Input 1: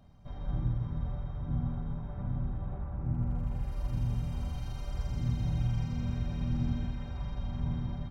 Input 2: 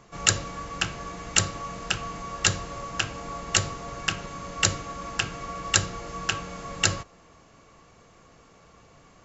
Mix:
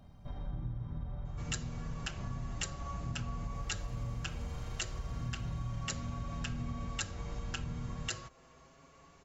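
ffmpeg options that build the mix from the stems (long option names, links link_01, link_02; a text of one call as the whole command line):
ffmpeg -i stem1.wav -i stem2.wav -filter_complex "[0:a]volume=2dB[link_01];[1:a]asplit=2[link_02][link_03];[link_03]adelay=6.2,afreqshift=0.32[link_04];[link_02][link_04]amix=inputs=2:normalize=1,adelay=1250,volume=-2.5dB[link_05];[link_01][link_05]amix=inputs=2:normalize=0,acompressor=threshold=-38dB:ratio=3" out.wav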